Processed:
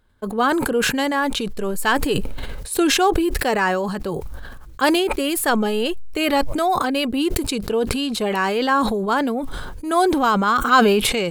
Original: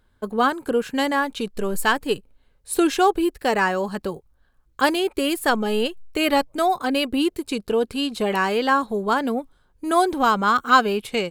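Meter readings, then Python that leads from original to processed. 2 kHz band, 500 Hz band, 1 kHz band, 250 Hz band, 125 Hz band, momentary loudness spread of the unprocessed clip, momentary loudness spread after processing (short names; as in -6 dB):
+1.5 dB, +1.5 dB, +1.0 dB, +2.5 dB, +6.5 dB, 9 LU, 10 LU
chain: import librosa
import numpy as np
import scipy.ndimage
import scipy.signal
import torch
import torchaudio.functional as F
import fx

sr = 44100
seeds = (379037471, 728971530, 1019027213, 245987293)

y = fx.sustainer(x, sr, db_per_s=25.0)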